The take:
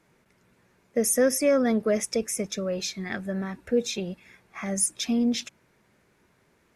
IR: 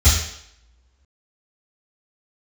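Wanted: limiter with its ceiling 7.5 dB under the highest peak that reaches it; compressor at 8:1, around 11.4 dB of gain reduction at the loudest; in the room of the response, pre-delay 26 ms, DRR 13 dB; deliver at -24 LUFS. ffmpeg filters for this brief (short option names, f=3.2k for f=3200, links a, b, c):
-filter_complex "[0:a]acompressor=threshold=-29dB:ratio=8,alimiter=level_in=2.5dB:limit=-24dB:level=0:latency=1,volume=-2.5dB,asplit=2[a][b];[1:a]atrim=start_sample=2205,adelay=26[c];[b][c]afir=irnorm=-1:irlink=0,volume=-32dB[d];[a][d]amix=inputs=2:normalize=0,volume=11dB"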